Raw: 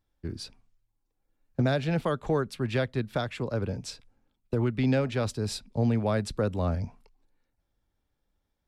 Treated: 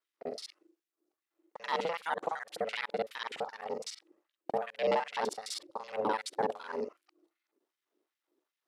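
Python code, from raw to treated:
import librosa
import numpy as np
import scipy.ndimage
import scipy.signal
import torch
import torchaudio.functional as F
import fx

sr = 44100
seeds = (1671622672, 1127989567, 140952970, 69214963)

y = fx.local_reverse(x, sr, ms=42.0)
y = y * np.sin(2.0 * np.pi * 330.0 * np.arange(len(y)) / sr)
y = fx.filter_lfo_highpass(y, sr, shape='sine', hz=2.6, low_hz=350.0, high_hz=2100.0, q=1.3)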